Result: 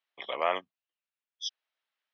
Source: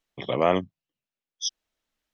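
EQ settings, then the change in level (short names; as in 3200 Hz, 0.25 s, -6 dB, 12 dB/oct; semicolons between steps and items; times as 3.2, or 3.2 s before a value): HPF 800 Hz 12 dB/oct; air absorption 280 m; high shelf 2300 Hz +7 dB; -1.5 dB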